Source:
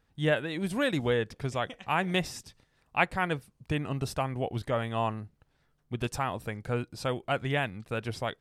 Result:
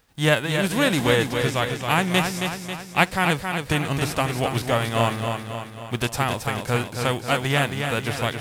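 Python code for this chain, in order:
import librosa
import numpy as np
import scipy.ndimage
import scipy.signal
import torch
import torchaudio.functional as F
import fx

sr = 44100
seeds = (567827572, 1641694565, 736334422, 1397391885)

y = fx.envelope_flatten(x, sr, power=0.6)
y = fx.echo_feedback(y, sr, ms=271, feedback_pct=54, wet_db=-6)
y = y * 10.0 ** (7.0 / 20.0)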